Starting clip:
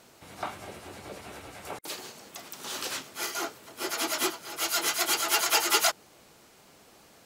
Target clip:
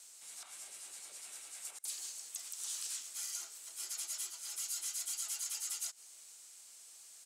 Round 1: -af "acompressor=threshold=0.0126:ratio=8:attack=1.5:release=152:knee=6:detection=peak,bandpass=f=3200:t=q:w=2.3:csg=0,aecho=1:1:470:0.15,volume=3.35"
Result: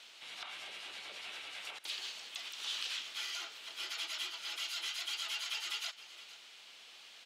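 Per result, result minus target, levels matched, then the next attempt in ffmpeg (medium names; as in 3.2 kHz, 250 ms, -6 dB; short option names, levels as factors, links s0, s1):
8 kHz band -10.5 dB; echo-to-direct +10.5 dB
-af "acompressor=threshold=0.0126:ratio=8:attack=1.5:release=152:knee=6:detection=peak,bandpass=f=8200:t=q:w=2.3:csg=0,aecho=1:1:470:0.15,volume=3.35"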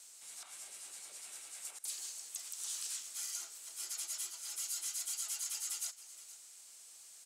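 echo-to-direct +10.5 dB
-af "acompressor=threshold=0.0126:ratio=8:attack=1.5:release=152:knee=6:detection=peak,bandpass=f=8200:t=q:w=2.3:csg=0,aecho=1:1:470:0.0447,volume=3.35"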